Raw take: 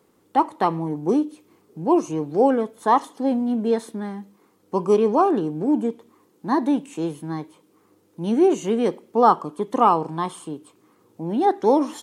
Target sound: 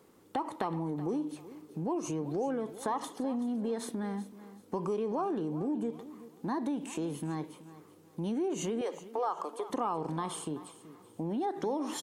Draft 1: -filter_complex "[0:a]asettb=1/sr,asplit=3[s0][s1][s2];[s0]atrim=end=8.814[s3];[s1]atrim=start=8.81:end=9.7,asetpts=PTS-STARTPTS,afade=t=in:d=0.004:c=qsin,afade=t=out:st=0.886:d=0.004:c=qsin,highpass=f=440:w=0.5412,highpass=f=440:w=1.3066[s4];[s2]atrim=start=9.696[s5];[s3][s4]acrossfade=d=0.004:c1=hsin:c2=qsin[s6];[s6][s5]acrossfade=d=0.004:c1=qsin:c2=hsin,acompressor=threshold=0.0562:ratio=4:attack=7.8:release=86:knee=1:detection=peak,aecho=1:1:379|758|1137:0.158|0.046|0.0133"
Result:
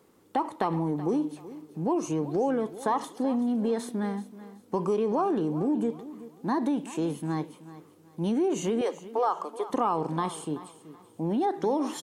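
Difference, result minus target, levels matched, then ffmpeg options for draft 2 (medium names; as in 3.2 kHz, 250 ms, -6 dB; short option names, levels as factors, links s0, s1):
compression: peak gain reduction -6.5 dB
-filter_complex "[0:a]asettb=1/sr,asplit=3[s0][s1][s2];[s0]atrim=end=8.814[s3];[s1]atrim=start=8.81:end=9.7,asetpts=PTS-STARTPTS,afade=t=in:d=0.004:c=qsin,afade=t=out:st=0.886:d=0.004:c=qsin,highpass=f=440:w=0.5412,highpass=f=440:w=1.3066[s4];[s2]atrim=start=9.696[s5];[s3][s4]acrossfade=d=0.004:c1=hsin:c2=qsin[s6];[s6][s5]acrossfade=d=0.004:c1=qsin:c2=hsin,acompressor=threshold=0.0211:ratio=4:attack=7.8:release=86:knee=1:detection=peak,aecho=1:1:379|758|1137:0.158|0.046|0.0133"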